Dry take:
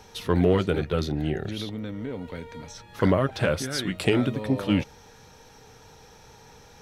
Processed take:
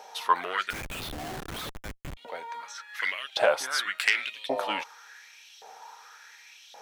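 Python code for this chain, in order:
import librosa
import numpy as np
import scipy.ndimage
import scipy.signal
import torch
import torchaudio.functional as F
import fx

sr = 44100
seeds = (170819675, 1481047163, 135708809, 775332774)

y = fx.self_delay(x, sr, depth_ms=0.21, at=(4.0, 4.4))
y = fx.filter_lfo_highpass(y, sr, shape='saw_up', hz=0.89, low_hz=620.0, high_hz=3400.0, q=4.1)
y = fx.schmitt(y, sr, flips_db=-38.0, at=(0.7, 2.17))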